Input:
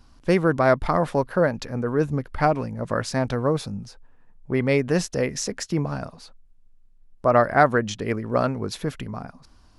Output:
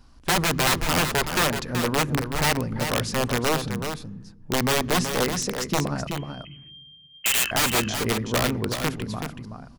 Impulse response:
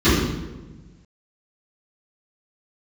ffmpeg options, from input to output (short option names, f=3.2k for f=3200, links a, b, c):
-filter_complex "[0:a]asettb=1/sr,asplit=3[a][b][c];[a]atrim=end=6.074[d];[b]atrim=start=6.07:end=7.51,asetpts=PTS-STARTPTS,afade=t=in:d=0.004:c=qsin,afade=t=out:st=1.436:d=0.004:c=qsin,lowpass=f=2.7k:t=q:w=0.5098,lowpass=f=2.7k:t=q:w=0.6013,lowpass=f=2.7k:t=q:w=0.9,lowpass=f=2.7k:t=q:w=2.563,afreqshift=-3200[e];[c]atrim=start=7.506[f];[d][e]acrossfade=d=0.004:c1=hsin:c2=qsin[g];[g][f]acrossfade=d=0.004:c1=qsin:c2=hsin,aeval=exprs='(mod(5.96*val(0)+1,2)-1)/5.96':c=same,aecho=1:1:377:0.422,asplit=2[h][i];[1:a]atrim=start_sample=2205,lowshelf=f=140:g=10[j];[i][j]afir=irnorm=-1:irlink=0,volume=-46dB[k];[h][k]amix=inputs=2:normalize=0"